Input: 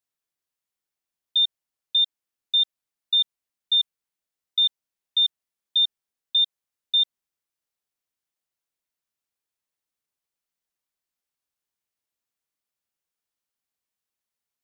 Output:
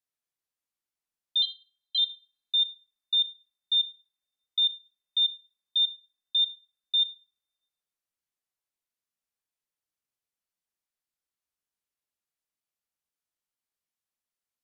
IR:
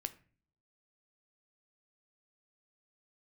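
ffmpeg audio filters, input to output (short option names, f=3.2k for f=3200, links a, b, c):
-filter_complex "[0:a]asettb=1/sr,asplit=3[a][b][c];[a]atrim=end=1.424[d];[b]atrim=start=1.42:end=1.98,asetpts=PTS-STARTPTS,afade=t=in:d=0.004:c=qsin,afade=t=out:st=0.556:d=0.004:c=qsin,aeval=exprs='val(0)*sin(2*PI*430*n/s)':c=same[e];[c]atrim=start=1.976[f];[d][e]acrossfade=d=0.004:c1=hsin:c2=qsin[g];[g][f]acrossfade=d=0.004:c1=qsin:c2=hsin[h];[1:a]atrim=start_sample=2205,asetrate=27342,aresample=44100[i];[h][i]afir=irnorm=-1:irlink=0,volume=-5dB"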